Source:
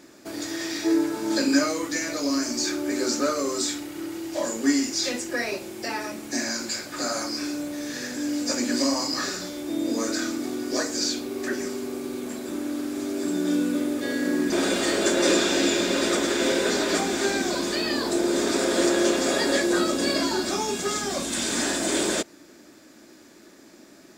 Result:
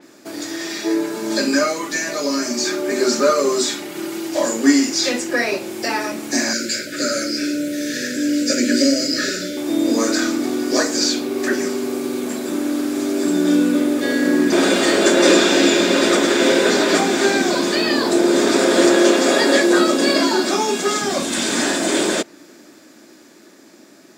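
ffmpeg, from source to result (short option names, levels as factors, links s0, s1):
-filter_complex "[0:a]asettb=1/sr,asplit=3[s0][s1][s2];[s0]atrim=end=0.654[s3];[s1]atrim=start=0.65:end=4.29,asetpts=PTS-STARTPTS,afade=t=in:d=0.004:c=qsin,afade=t=out:st=3.636:d=0.004:c=qsin,aecho=1:1:5:0.65,atrim=end_sample=160524[s4];[s2]atrim=start=4.286[s5];[s3][s4]acrossfade=d=0.004:c1=hsin:c2=qsin[s6];[s6][s5]acrossfade=d=0.004:c1=qsin:c2=hsin,asettb=1/sr,asplit=3[s7][s8][s9];[s7]atrim=end=6.534[s10];[s8]atrim=start=6.53:end=9.57,asetpts=PTS-STARTPTS,afade=t=in:d=0.004:c=qsin,afade=t=out:st=3.036:d=0.004:c=qsin,asuperstop=centerf=920:order=20:qfactor=1.4[s11];[s9]atrim=start=9.566[s12];[s10][s11]acrossfade=d=0.004:c1=hsin:c2=qsin[s13];[s13][s12]acrossfade=d=0.004:c1=qsin:c2=hsin,asettb=1/sr,asplit=3[s14][s15][s16];[s14]atrim=end=18.964[s17];[s15]atrim=start=18.96:end=21.02,asetpts=PTS-STARTPTS,afade=t=in:d=0.004:c=qsin,afade=t=out:st=2.056:d=0.004:c=qsin,highpass=f=190:w=0.5412,highpass=f=190:w=1.3066[s18];[s16]atrim=start=21.016[s19];[s17][s18]acrossfade=d=0.004:c1=hsin:c2=qsin[s20];[s20][s19]acrossfade=d=0.004:c1=qsin:c2=hsin,highpass=140,dynaudnorm=f=510:g=11:m=1.78,adynamicequalizer=threshold=0.0141:dfrequency=4500:dqfactor=0.7:tfrequency=4500:tqfactor=0.7:attack=5:release=100:ratio=0.375:range=2:mode=cutabove:tftype=highshelf,volume=1.58"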